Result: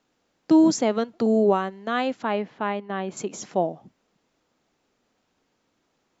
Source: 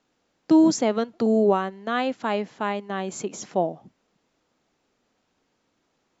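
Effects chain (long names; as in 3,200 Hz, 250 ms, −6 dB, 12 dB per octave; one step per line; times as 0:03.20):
0:02.23–0:03.17: low-pass filter 3,300 Hz 12 dB per octave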